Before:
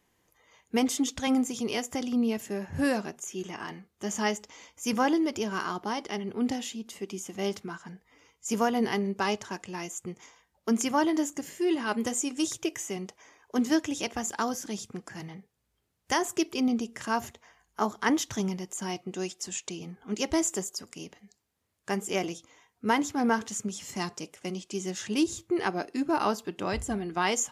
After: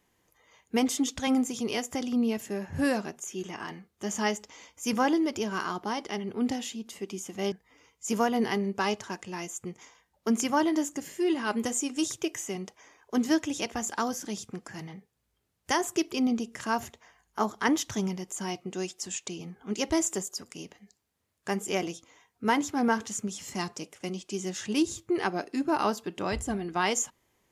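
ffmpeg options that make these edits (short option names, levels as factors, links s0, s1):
-filter_complex "[0:a]asplit=2[s0][s1];[s0]atrim=end=7.522[s2];[s1]atrim=start=7.928[s3];[s2][s3]acrossfade=d=0.004:c1=hsin:c2=hsin"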